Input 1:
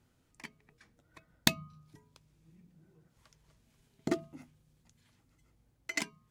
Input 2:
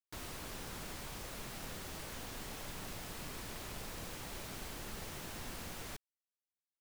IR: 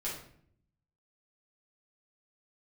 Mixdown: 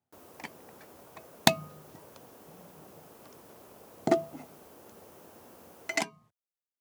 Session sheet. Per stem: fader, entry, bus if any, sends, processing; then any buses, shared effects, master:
+3.0 dB, 0.00 s, no send, bell 730 Hz +13.5 dB 0.69 oct; gate with hold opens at -56 dBFS
-4.5 dB, 0.00 s, no send, graphic EQ 125/500/2000/4000/8000 Hz -11/+5/-9/-10/-6 dB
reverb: off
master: HPF 91 Hz 24 dB/oct

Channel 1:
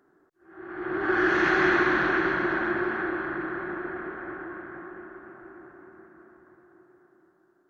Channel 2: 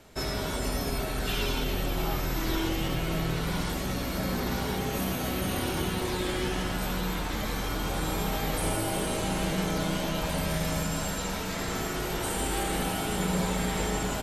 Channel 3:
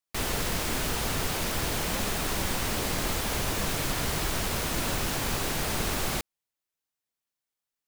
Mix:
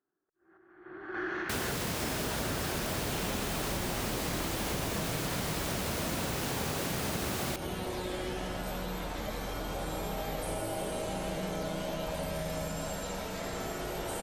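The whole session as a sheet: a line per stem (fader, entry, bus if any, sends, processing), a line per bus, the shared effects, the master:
-8.5 dB, 0.00 s, no send, random-step tremolo, depth 90%
-6.5 dB, 1.85 s, no send, bell 600 Hz +7.5 dB
+0.5 dB, 1.35 s, no send, HPF 91 Hz; low shelf 490 Hz +4.5 dB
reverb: off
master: compressor 4:1, threshold -31 dBFS, peak gain reduction 7.5 dB

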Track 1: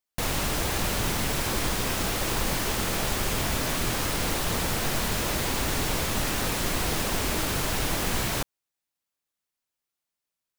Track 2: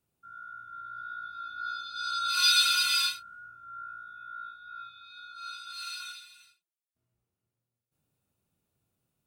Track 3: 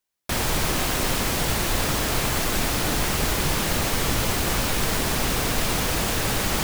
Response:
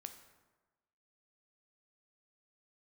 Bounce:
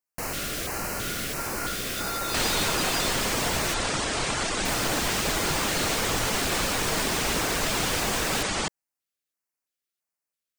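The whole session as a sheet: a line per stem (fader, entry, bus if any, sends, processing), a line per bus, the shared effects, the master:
-1.5 dB, 0.00 s, muted 3.74–4.65, no send, LFO notch square 1.5 Hz 910–3500 Hz
-16.0 dB, 0.00 s, no send, reverb removal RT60 1.9 s; sample leveller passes 5
0.0 dB, 2.05 s, no send, steep low-pass 9400 Hz 96 dB/oct; reverb removal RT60 0.52 s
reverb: off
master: low shelf 180 Hz -9 dB

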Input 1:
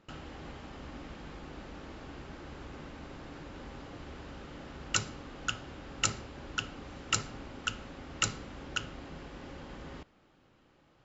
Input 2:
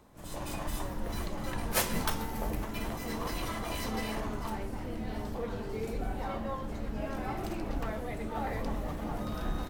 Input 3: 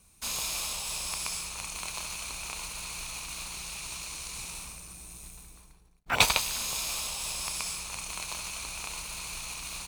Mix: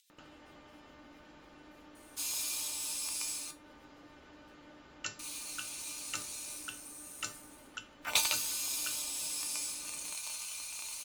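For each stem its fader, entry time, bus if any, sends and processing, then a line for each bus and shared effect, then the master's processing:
0.0 dB, 0.10 s, no send, dry
-16.0 dB, 0.00 s, no send, inverse Chebyshev high-pass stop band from 910 Hz, stop band 60 dB; compressor, threshold -49 dBFS, peak gain reduction 20 dB; rotary speaker horn 7.5 Hz
-2.5 dB, 1.95 s, muted 3.51–5.19, no send, high shelf 3600 Hz +12 dB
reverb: off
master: resonator 300 Hz, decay 0.2 s, harmonics all, mix 80%; upward compressor, threshold -48 dBFS; low shelf 170 Hz -10.5 dB

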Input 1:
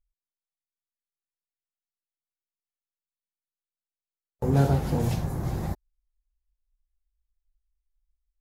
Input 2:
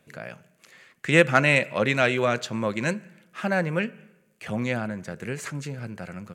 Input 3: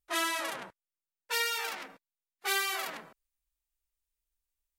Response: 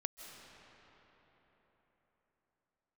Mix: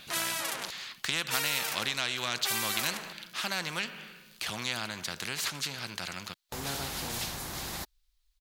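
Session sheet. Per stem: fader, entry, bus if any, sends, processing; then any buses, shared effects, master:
-5.5 dB, 2.10 s, bus A, no send, dry
+1.0 dB, 0.00 s, bus A, no send, graphic EQ 250/500/2000/4000/8000 Hz -4/-6/-6/+5/-9 dB
-1.5 dB, 0.00 s, no bus, no send, dry
bus A: 0.0 dB, graphic EQ 125/500/4000 Hz -5/-9/+10 dB; compressor, threshold -25 dBFS, peak gain reduction 11 dB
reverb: off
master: low shelf 370 Hz -8 dB; spectral compressor 2:1

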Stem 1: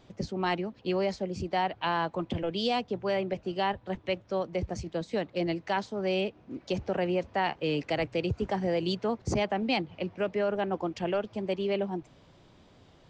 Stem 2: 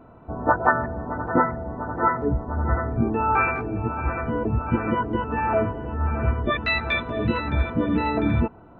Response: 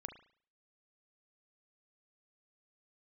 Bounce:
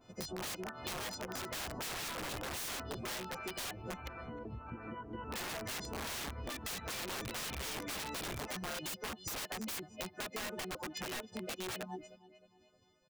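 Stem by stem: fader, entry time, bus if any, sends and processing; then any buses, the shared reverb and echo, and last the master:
-3.0 dB, 0.00 s, muted 4.08–5.33, no send, echo send -22 dB, frequency quantiser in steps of 3 st; reverb removal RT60 1 s; expander -51 dBFS
1.18 s -17.5 dB -> 1.73 s -6 dB -> 2.64 s -6 dB -> 3.05 s -18.5 dB -> 5.07 s -18.5 dB -> 5.32 s -11 dB, 0.00 s, no send, no echo send, high shelf 3500 Hz +10.5 dB; compressor 3:1, threshold -22 dBFS, peak gain reduction 8 dB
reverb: off
echo: feedback echo 0.31 s, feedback 42%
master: wrapped overs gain 28.5 dB; compressor, threshold -39 dBFS, peak gain reduction 7.5 dB

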